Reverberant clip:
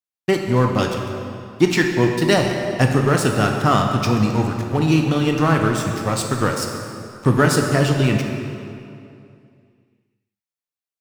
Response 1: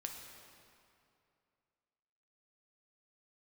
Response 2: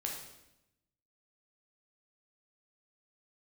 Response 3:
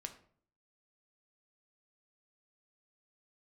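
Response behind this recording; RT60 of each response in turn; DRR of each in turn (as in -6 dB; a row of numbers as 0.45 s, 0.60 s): 1; 2.6 s, 0.90 s, 0.55 s; 2.0 dB, -1.0 dB, 5.5 dB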